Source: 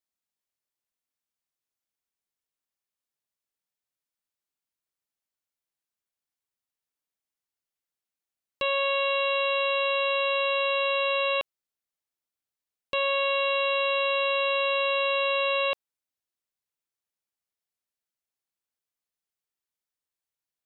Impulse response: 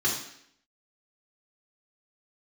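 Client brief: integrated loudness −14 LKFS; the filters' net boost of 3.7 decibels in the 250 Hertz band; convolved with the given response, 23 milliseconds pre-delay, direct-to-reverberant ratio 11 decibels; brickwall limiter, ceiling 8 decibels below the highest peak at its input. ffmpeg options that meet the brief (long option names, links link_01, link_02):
-filter_complex "[0:a]equalizer=frequency=250:width_type=o:gain=5,alimiter=level_in=1dB:limit=-24dB:level=0:latency=1,volume=-1dB,asplit=2[link_01][link_02];[1:a]atrim=start_sample=2205,adelay=23[link_03];[link_02][link_03]afir=irnorm=-1:irlink=0,volume=-21dB[link_04];[link_01][link_04]amix=inputs=2:normalize=0,volume=17dB"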